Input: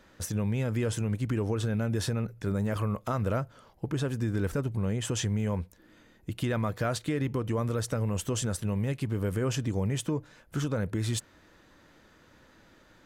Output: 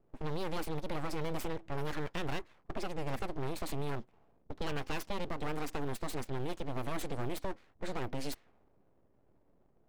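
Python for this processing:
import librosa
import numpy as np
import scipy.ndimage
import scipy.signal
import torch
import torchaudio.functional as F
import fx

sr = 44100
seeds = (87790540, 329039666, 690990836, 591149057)

y = fx.speed_glide(x, sr, from_pct=146, to_pct=118)
y = fx.env_lowpass(y, sr, base_hz=310.0, full_db=-24.5)
y = np.abs(y)
y = F.gain(torch.from_numpy(y), -4.5).numpy()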